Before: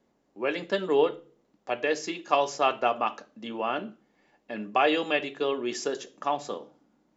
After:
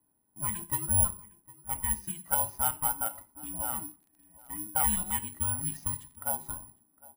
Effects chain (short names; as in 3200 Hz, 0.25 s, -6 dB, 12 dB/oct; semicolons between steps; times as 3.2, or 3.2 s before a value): band inversion scrambler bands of 500 Hz; LPF 1300 Hz 6 dB/oct; 3.66–6.15 crackle 19/s -> 81/s -42 dBFS; outdoor echo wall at 130 m, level -21 dB; careless resampling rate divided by 4×, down filtered, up zero stuff; gain -8.5 dB